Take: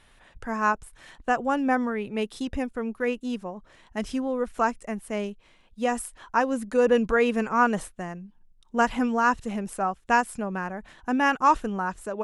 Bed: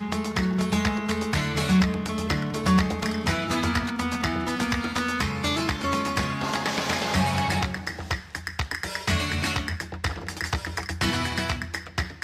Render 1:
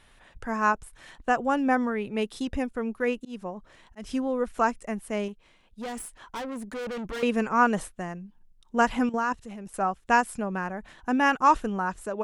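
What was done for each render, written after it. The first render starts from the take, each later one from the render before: 3.17–4.13 auto swell 0.191 s; 5.28–7.23 tube stage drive 32 dB, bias 0.4; 9.09–9.74 level quantiser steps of 13 dB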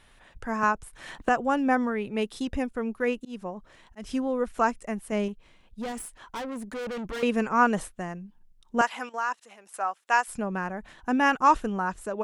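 0.63–1.29 three-band squash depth 70%; 5.12–5.92 low shelf 230 Hz +6.5 dB; 8.81–10.28 HPF 740 Hz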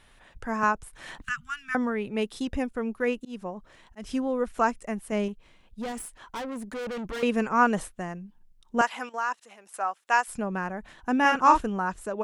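1.24–1.75 Chebyshev band-stop 170–1300 Hz, order 4; 11.21–11.61 doubler 38 ms -4.5 dB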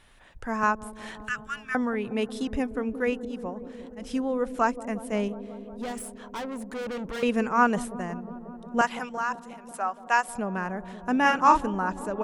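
dark delay 0.18 s, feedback 81%, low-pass 570 Hz, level -12 dB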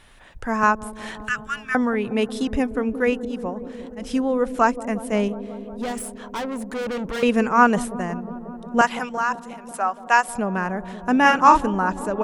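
gain +6 dB; limiter -2 dBFS, peak gain reduction 1.5 dB

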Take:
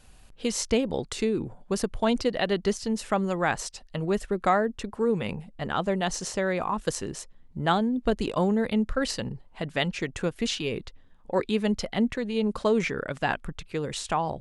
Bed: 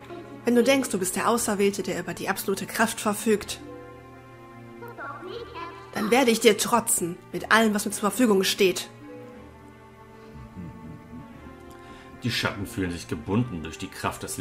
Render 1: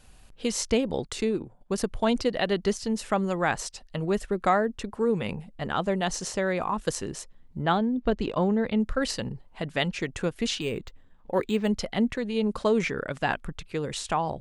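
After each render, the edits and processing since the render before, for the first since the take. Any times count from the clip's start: 1.05–1.78 transient shaper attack -1 dB, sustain -11 dB; 7.62–8.8 air absorption 120 m; 10.61–11.68 decimation joined by straight lines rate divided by 4×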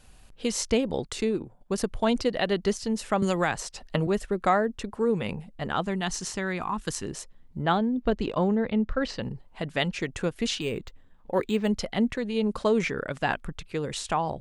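3.22–4.07 three-band squash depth 100%; 5.82–7.04 bell 550 Hz -10.5 dB 0.69 oct; 8.55–9.23 air absorption 150 m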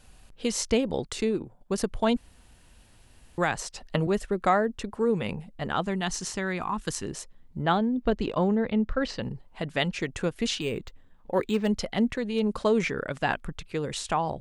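2.17–3.38 room tone; 11.45–12.52 hard clip -16 dBFS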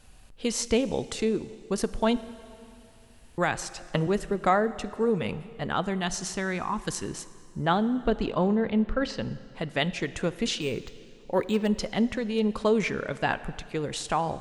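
plate-style reverb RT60 2.5 s, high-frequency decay 0.9×, DRR 14.5 dB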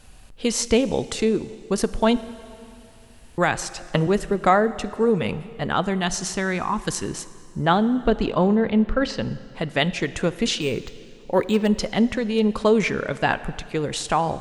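gain +5.5 dB

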